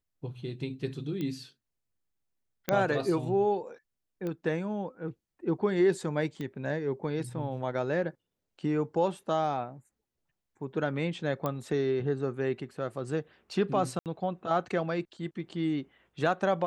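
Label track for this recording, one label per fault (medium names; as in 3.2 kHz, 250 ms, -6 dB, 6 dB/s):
1.210000	1.210000	pop -23 dBFS
2.690000	2.690000	pop -12 dBFS
4.270000	4.270000	pop -24 dBFS
6.410000	6.410000	pop -25 dBFS
11.460000	11.460000	pop -18 dBFS
13.990000	14.060000	dropout 68 ms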